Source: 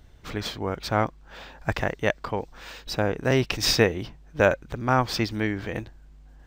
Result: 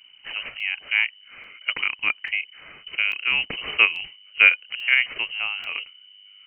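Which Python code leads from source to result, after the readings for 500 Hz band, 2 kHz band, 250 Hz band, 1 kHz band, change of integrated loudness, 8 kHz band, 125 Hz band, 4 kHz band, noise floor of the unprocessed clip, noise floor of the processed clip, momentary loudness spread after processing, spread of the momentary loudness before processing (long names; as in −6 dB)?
−19.0 dB, +10.0 dB, −21.0 dB, −8.5 dB, +4.5 dB, below −30 dB, below −25 dB, +5.0 dB, −51 dBFS, −52 dBFS, 17 LU, 14 LU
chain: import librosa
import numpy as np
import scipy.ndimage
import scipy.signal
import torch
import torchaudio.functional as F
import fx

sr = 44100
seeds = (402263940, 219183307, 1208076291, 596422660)

p1 = fx.freq_invert(x, sr, carrier_hz=3000)
p2 = fx.level_steps(p1, sr, step_db=19)
p3 = p1 + F.gain(torch.from_numpy(p2), 0.0).numpy()
p4 = fx.peak_eq(p3, sr, hz=2200.0, db=13.0, octaves=0.48)
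p5 = fx.buffer_crackle(p4, sr, first_s=0.6, period_s=0.84, block=64, kind='zero')
y = F.gain(torch.from_numpy(p5), -8.5).numpy()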